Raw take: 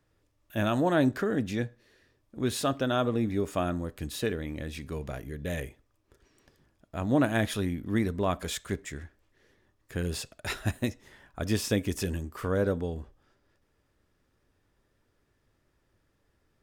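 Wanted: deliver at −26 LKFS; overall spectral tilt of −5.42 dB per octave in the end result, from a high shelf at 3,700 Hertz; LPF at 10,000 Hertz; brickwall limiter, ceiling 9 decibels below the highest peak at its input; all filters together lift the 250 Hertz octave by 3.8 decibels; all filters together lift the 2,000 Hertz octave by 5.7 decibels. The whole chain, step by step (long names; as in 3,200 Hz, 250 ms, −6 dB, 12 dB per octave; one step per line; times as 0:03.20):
low-pass filter 10,000 Hz
parametric band 250 Hz +4.5 dB
parametric band 2,000 Hz +8.5 dB
high-shelf EQ 3,700 Hz −4.5 dB
level +4.5 dB
brickwall limiter −13.5 dBFS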